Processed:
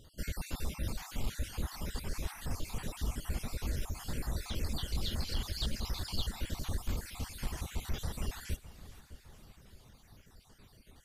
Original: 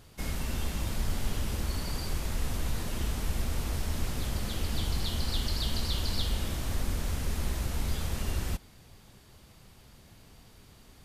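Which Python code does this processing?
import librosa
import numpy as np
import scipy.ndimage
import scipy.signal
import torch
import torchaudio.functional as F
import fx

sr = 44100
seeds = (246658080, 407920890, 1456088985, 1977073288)

p1 = fx.spec_dropout(x, sr, seeds[0], share_pct=45)
p2 = fx.dereverb_blind(p1, sr, rt60_s=0.75)
p3 = 10.0 ** (-26.0 / 20.0) * (np.abs((p2 / 10.0 ** (-26.0 / 20.0) + 3.0) % 4.0 - 2.0) - 1.0)
p4 = p2 + (p3 * librosa.db_to_amplitude(-8.0))
p5 = fx.echo_split(p4, sr, split_hz=1800.0, low_ms=608, high_ms=445, feedback_pct=52, wet_db=-15.5)
y = p5 * librosa.db_to_amplitude(-4.5)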